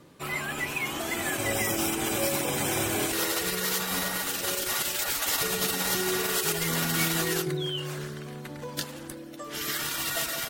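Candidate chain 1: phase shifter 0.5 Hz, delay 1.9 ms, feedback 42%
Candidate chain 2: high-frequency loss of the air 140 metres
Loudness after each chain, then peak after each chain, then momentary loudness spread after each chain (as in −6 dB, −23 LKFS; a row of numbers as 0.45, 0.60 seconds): −26.5, −31.5 LKFS; −12.0, −15.5 dBFS; 10, 9 LU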